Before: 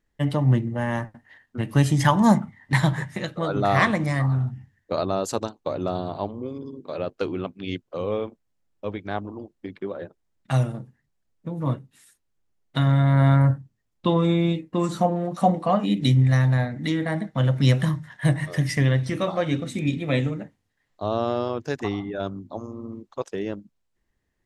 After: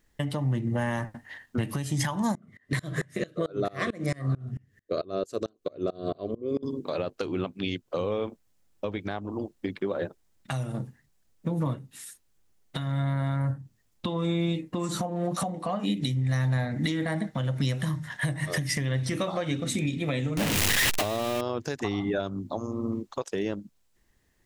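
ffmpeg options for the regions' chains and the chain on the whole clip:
ffmpeg -i in.wav -filter_complex "[0:a]asettb=1/sr,asplit=3[link_01][link_02][link_03];[link_01]atrim=end=2.354[link_04];[link_02]atrim=start=2.35:end=6.63,asetpts=PTS-STARTPTS,afade=type=in:duration=0.004:curve=qsin,afade=type=out:start_time=4.276:duration=0.004:curve=qsin,asuperstop=centerf=870:order=4:qfactor=2.8,equalizer=frequency=410:width_type=o:width=0.96:gain=10.5,aeval=exprs='val(0)*pow(10,-28*if(lt(mod(-4.5*n/s,1),2*abs(-4.5)/1000),1-mod(-4.5*n/s,1)/(2*abs(-4.5)/1000),(mod(-4.5*n/s,1)-2*abs(-4.5)/1000)/(1-2*abs(-4.5)/1000))/20)':channel_layout=same[link_05];[link_03]atrim=start=6.626[link_06];[link_04][link_05]acrossfade=duration=0.004:curve1=hsin:curve2=qsin[link_07];[link_07][link_06]acrossfade=duration=0.004:curve1=qsin:curve2=hsin,asettb=1/sr,asplit=3[link_08][link_09][link_10];[link_08]atrim=end=20.374[link_11];[link_09]atrim=start=20.37:end=21.41,asetpts=PTS-STARTPTS,afade=type=in:duration=0.004:curve=qsin,afade=type=out:start_time=1.036:duration=0.004:curve=qsin,aeval=exprs='val(0)+0.5*0.0473*sgn(val(0))':channel_layout=same,equalizer=frequency=2700:width=1.7:gain=6.5[link_12];[link_10]atrim=start=21.406[link_13];[link_11][link_12]acrossfade=duration=0.004:curve1=hsin:curve2=qsin[link_14];[link_14][link_13]acrossfade=duration=0.004:curve1=qsin:curve2=hsin,acompressor=threshold=-27dB:ratio=10,alimiter=level_in=0.5dB:limit=-24dB:level=0:latency=1:release=327,volume=-0.5dB,highshelf=frequency=4000:gain=7.5,volume=6dB" out.wav

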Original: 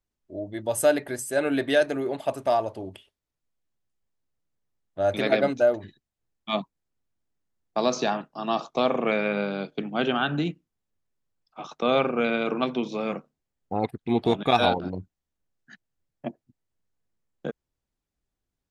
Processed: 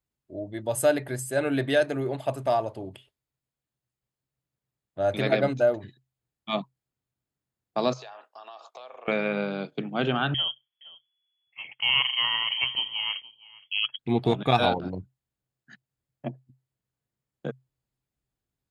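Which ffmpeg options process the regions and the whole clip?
ffmpeg -i in.wav -filter_complex "[0:a]asettb=1/sr,asplit=3[link_01][link_02][link_03];[link_01]atrim=end=7.934[link_04];[link_02]atrim=start=7.93:end=9.08,asetpts=PTS-STARTPTS,afade=type=in:duration=0.004:curve=qsin,afade=type=out:start_time=1.146:duration=0.004:curve=qsin,highpass=frequency=520:width=0.5412,highpass=frequency=520:width=1.3066,acompressor=threshold=-39dB:ratio=8:attack=3.2:release=140:knee=1:detection=peak[link_05];[link_03]atrim=start=9.076[link_06];[link_04][link_05]acrossfade=duration=0.004:curve1=hsin:curve2=qsin[link_07];[link_07][link_06]acrossfade=duration=0.004:curve1=qsin:curve2=hsin,asettb=1/sr,asplit=3[link_08][link_09][link_10];[link_08]atrim=end=10.344[link_11];[link_09]atrim=start=10.34:end=13.99,asetpts=PTS-STARTPTS,afade=type=in:duration=0.004:curve=qsin,afade=type=out:start_time=3.646:duration=0.004:curve=qsin,aecho=1:1:467:0.0891,atrim=end_sample=160965,lowpass=frequency=2900:width_type=q:width=0.5098,lowpass=frequency=2900:width_type=q:width=0.6013,lowpass=frequency=2900:width_type=q:width=0.9,lowpass=frequency=2900:width_type=q:width=2.563,afreqshift=-3400[link_12];[link_10]atrim=start=13.986[link_13];[link_11][link_12]acrossfade=duration=0.004:curve1=hsin:curve2=qsin[link_14];[link_14][link_13]acrossfade=duration=0.004:curve1=qsin:curve2=hsin,highpass=41,equalizer=frequency=130:width=7.3:gain=13.5,bandreject=frequency=5800:width=8,volume=-1.5dB" out.wav

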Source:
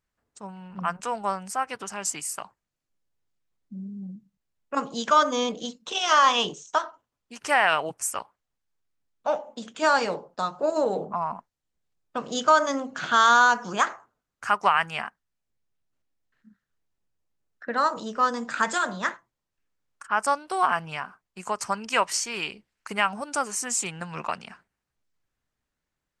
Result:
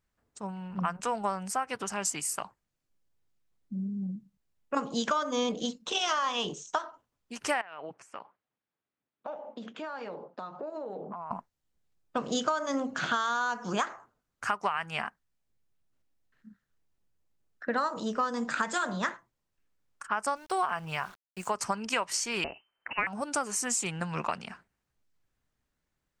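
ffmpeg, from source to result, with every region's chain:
ffmpeg -i in.wav -filter_complex "[0:a]asettb=1/sr,asplit=3[link_01][link_02][link_03];[link_01]atrim=end=7.614[link_04];[link_02]atrim=start=7.61:end=11.31,asetpts=PTS-STARTPTS,afade=type=in:duration=0.004:curve=qsin,afade=type=out:start_time=3.696:duration=0.004:curve=qsin,acompressor=threshold=-37dB:ratio=6:attack=3.2:release=140:knee=1:detection=peak,highpass=180,lowpass=2900[link_05];[link_03]atrim=start=11.306[link_06];[link_04][link_05]acrossfade=duration=0.004:curve1=hsin:curve2=qsin[link_07];[link_07][link_06]acrossfade=duration=0.004:curve1=qsin:curve2=hsin,asettb=1/sr,asplit=3[link_08][link_09][link_10];[link_08]atrim=end=20.364[link_11];[link_09]atrim=start=20.36:end=21.55,asetpts=PTS-STARTPTS,afade=type=in:duration=0.004:curve=qsin,afade=type=out:start_time=1.186:duration=0.004:curve=qsin,equalizer=frequency=260:width_type=o:width=0.31:gain=-11.5,aeval=exprs='val(0)*gte(abs(val(0)),0.00355)':channel_layout=same[link_12];[link_10]atrim=start=21.546[link_13];[link_11][link_12]acrossfade=duration=0.004:curve1=hsin:curve2=qsin[link_14];[link_14][link_13]acrossfade=duration=0.004:curve1=qsin:curve2=hsin,asettb=1/sr,asplit=3[link_15][link_16][link_17];[link_15]atrim=end=22.444[link_18];[link_16]atrim=start=22.44:end=23.07,asetpts=PTS-STARTPTS,afade=type=in:duration=0.004:curve=qsin,afade=type=out:start_time=0.626:duration=0.004:curve=qsin,equalizer=frequency=220:width=2.2:gain=-15,lowpass=frequency=2600:width_type=q:width=0.5098,lowpass=frequency=2600:width_type=q:width=0.6013,lowpass=frequency=2600:width_type=q:width=0.9,lowpass=frequency=2600:width_type=q:width=2.563,afreqshift=-3100[link_19];[link_17]atrim=start=23.066[link_20];[link_18][link_19]acrossfade=duration=0.004:curve1=hsin:curve2=qsin[link_21];[link_21][link_20]acrossfade=duration=0.004:curve1=qsin:curve2=hsin,acompressor=threshold=-26dB:ratio=10,lowshelf=frequency=410:gain=3.5" out.wav

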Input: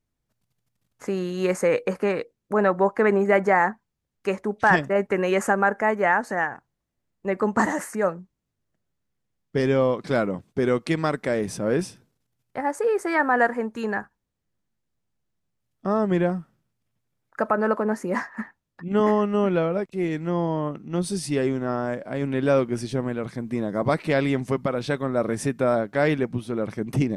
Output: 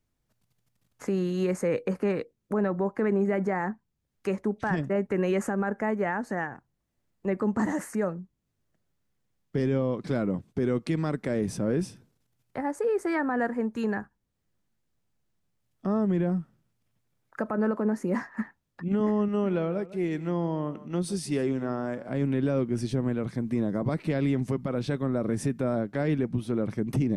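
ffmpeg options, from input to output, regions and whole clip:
ffmpeg -i in.wav -filter_complex "[0:a]asettb=1/sr,asplit=3[link_01][link_02][link_03];[link_01]atrim=end=19.284[link_04];[link_02]atrim=start=19.28:end=22.09,asetpts=PTS-STARTPTS,afade=type=in:duration=0.004:curve=qsin,afade=type=out:start_time=2.806:duration=0.004:curve=qsin,lowshelf=frequency=220:gain=-8,aecho=1:1:151:0.133,atrim=end_sample=123921[link_05];[link_03]atrim=start=22.086[link_06];[link_04][link_05]acrossfade=duration=0.004:curve1=hsin:curve2=qsin[link_07];[link_07][link_06]acrossfade=duration=0.004:curve1=qsin:curve2=hsin,acrossover=split=350[link_08][link_09];[link_09]acompressor=threshold=-50dB:ratio=1.5[link_10];[link_08][link_10]amix=inputs=2:normalize=0,alimiter=limit=-20dB:level=0:latency=1:release=52,volume=2dB" out.wav

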